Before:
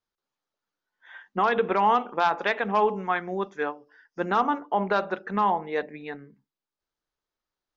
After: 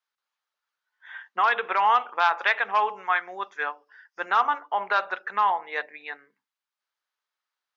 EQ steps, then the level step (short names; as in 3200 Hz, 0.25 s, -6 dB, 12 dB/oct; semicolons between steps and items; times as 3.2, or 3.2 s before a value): HPF 1200 Hz 12 dB/oct; high shelf 4400 Hz -11 dB; +7.5 dB